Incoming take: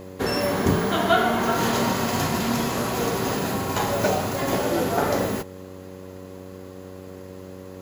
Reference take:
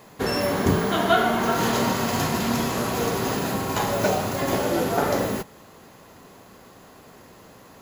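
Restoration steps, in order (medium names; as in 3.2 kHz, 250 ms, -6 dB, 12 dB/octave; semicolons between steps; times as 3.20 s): de-hum 93.3 Hz, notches 6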